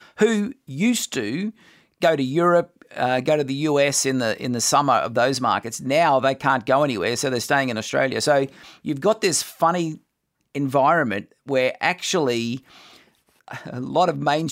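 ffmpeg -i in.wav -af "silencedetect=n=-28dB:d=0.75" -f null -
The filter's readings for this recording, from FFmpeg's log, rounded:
silence_start: 12.57
silence_end: 13.51 | silence_duration: 0.94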